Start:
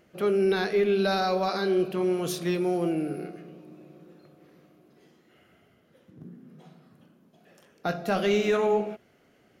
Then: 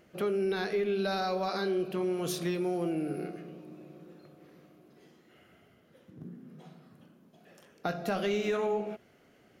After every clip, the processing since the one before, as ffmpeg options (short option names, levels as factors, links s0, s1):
-af "acompressor=threshold=0.0316:ratio=2.5"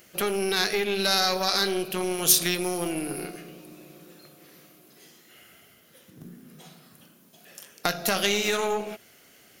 -af "aeval=exprs='0.141*(cos(1*acos(clip(val(0)/0.141,-1,1)))-cos(1*PI/2))+0.0158*(cos(3*acos(clip(val(0)/0.141,-1,1)))-cos(3*PI/2))+0.0158*(cos(4*acos(clip(val(0)/0.141,-1,1)))-cos(4*PI/2))+0.00708*(cos(6*acos(clip(val(0)/0.141,-1,1)))-cos(6*PI/2))+0.00316*(cos(8*acos(clip(val(0)/0.141,-1,1)))-cos(8*PI/2))':c=same,crystalizer=i=9:c=0,volume=1.5"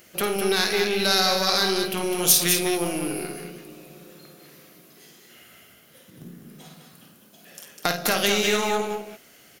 -af "aecho=1:1:52.48|204.1:0.398|0.501,volume=1.19"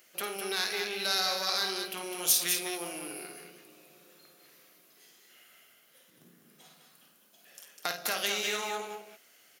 -af "highpass=f=730:p=1,volume=0.422"